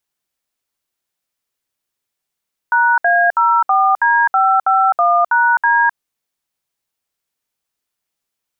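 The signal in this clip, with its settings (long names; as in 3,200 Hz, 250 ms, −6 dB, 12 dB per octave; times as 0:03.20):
touch tones "#A04D551#D", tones 259 ms, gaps 65 ms, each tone −12.5 dBFS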